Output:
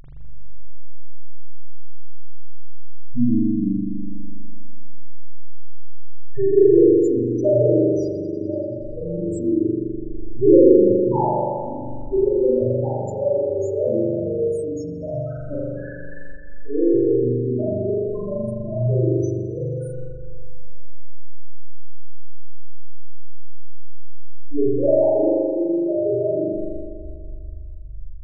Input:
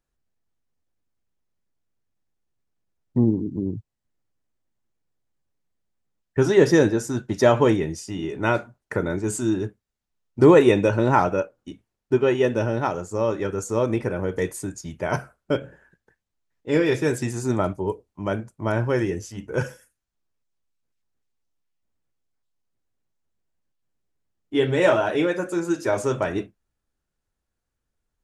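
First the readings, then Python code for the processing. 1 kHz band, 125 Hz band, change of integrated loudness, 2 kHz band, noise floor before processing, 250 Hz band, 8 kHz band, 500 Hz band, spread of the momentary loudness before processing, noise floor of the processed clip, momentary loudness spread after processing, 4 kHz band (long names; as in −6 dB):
−4.0 dB, +1.5 dB, +2.5 dB, below −15 dB, −82 dBFS, +3.5 dB, below −10 dB, +3.5 dB, 13 LU, −31 dBFS, 19 LU, below −25 dB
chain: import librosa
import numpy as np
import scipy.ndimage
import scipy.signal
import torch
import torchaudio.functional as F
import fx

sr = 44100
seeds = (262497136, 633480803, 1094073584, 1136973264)

y = fx.delta_mod(x, sr, bps=64000, step_db=-25.5)
y = fx.dynamic_eq(y, sr, hz=2000.0, q=1.8, threshold_db=-42.0, ratio=4.0, max_db=-7)
y = fx.quant_float(y, sr, bits=2)
y = fx.spec_topn(y, sr, count=2)
y = fx.rev_spring(y, sr, rt60_s=2.0, pass_ms=(41,), chirp_ms=75, drr_db=-8.5)
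y = y * librosa.db_to_amplitude(-2.0)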